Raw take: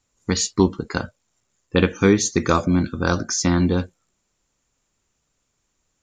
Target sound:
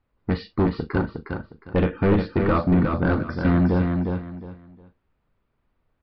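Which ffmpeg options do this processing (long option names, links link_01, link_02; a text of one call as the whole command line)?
ffmpeg -i in.wav -filter_complex "[0:a]asplit=2[link_01][link_02];[link_02]adelay=39,volume=-13dB[link_03];[link_01][link_03]amix=inputs=2:normalize=0,aresample=11025,asoftclip=type=hard:threshold=-16dB,aresample=44100,lowpass=1800,lowshelf=frequency=74:gain=6,aecho=1:1:359|718|1077:0.562|0.141|0.0351" out.wav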